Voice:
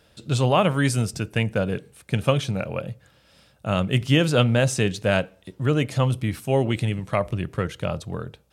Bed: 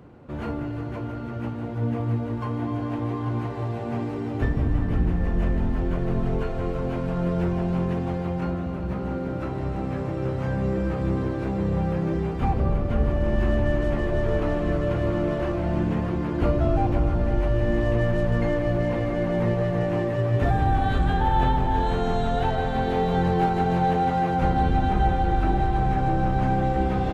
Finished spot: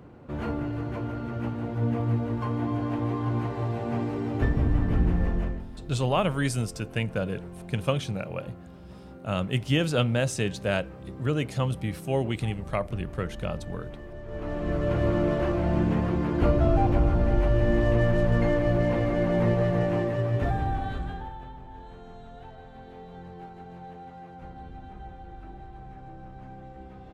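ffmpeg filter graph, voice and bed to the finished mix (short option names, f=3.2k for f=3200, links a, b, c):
-filter_complex "[0:a]adelay=5600,volume=-5.5dB[a];[1:a]volume=16.5dB,afade=t=out:st=5.22:d=0.43:silence=0.149624,afade=t=in:st=14.26:d=0.77:silence=0.141254,afade=t=out:st=19.69:d=1.7:silence=0.0841395[b];[a][b]amix=inputs=2:normalize=0"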